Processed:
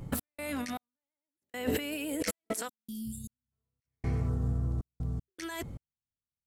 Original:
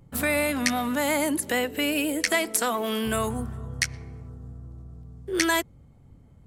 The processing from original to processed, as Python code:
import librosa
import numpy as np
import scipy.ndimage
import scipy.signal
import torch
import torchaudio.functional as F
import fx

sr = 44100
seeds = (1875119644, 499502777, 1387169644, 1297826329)

y = fx.over_compress(x, sr, threshold_db=-36.0, ratio=-1.0)
y = fx.cheby2_bandstop(y, sr, low_hz=510.0, high_hz=2200.0, order=4, stop_db=50, at=(2.67, 3.51), fade=0.02)
y = fx.step_gate(y, sr, bpm=78, pattern='x.xx....xxxx.', floor_db=-60.0, edge_ms=4.5)
y = y * 10.0 ** (3.0 / 20.0)